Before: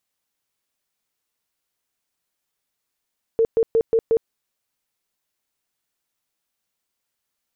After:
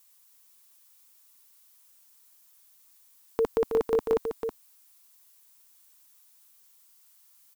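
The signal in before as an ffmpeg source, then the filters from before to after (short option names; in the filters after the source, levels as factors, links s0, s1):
-f lavfi -i "aevalsrc='0.211*sin(2*PI*453*mod(t,0.18))*lt(mod(t,0.18),27/453)':d=0.9:s=44100"
-filter_complex "[0:a]equalizer=f=125:t=o:w=1:g=-9,equalizer=f=250:t=o:w=1:g=5,equalizer=f=500:t=o:w=1:g=-10,equalizer=f=1000:t=o:w=1:g=10,crystalizer=i=6:c=0,asplit=2[s0][s1];[s1]aecho=0:1:322:0.447[s2];[s0][s2]amix=inputs=2:normalize=0"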